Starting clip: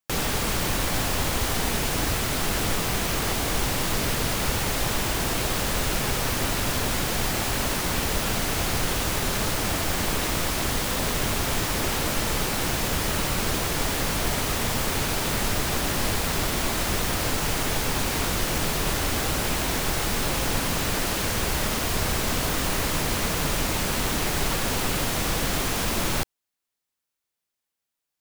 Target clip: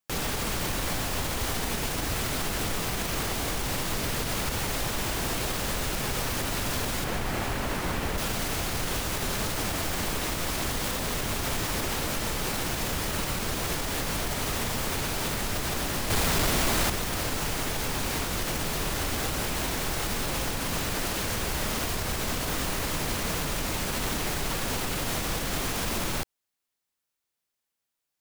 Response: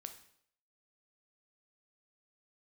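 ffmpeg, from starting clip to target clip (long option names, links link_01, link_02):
-filter_complex "[0:a]asettb=1/sr,asplit=3[link_01][link_02][link_03];[link_01]atrim=end=7.044[link_04];[link_02]atrim=start=7.04:end=8.18,asetpts=PTS-STARTPTS,afade=type=in:duration=0.004:curve=qsin,afade=type=out:start_time=1.136:duration=0.004:curve=qsin,acrossover=split=2700[link_05][link_06];[link_06]acompressor=threshold=-35dB:ratio=4:attack=1:release=60[link_07];[link_05][link_07]amix=inputs=2:normalize=0[link_08];[link_03]atrim=start=8.176[link_09];[link_04][link_08]acrossfade=duration=0.004:curve1=hsin:curve2=qsin[link_10];[link_10][link_09]acrossfade=duration=0.004:curve1=qsin:curve2=hsin,asettb=1/sr,asplit=3[link_11][link_12][link_13];[link_11]atrim=end=16.104[link_14];[link_12]atrim=start=16.1:end=16.9,asetpts=PTS-STARTPTS,afade=type=in:duration=0.004:curve=qsin,afade=type=out:start_time=0.796:duration=0.004:curve=qsin,aeval=exprs='0.237*sin(PI/2*2*val(0)/0.237)':channel_layout=same[link_15];[link_13]atrim=start=16.896[link_16];[link_14][link_15]acrossfade=duration=0.004:curve1=hsin:curve2=qsin[link_17];[link_17][link_16]acrossfade=duration=0.004:curve1=qsin:curve2=hsin,alimiter=limit=-19.5dB:level=0:latency=1:release=92"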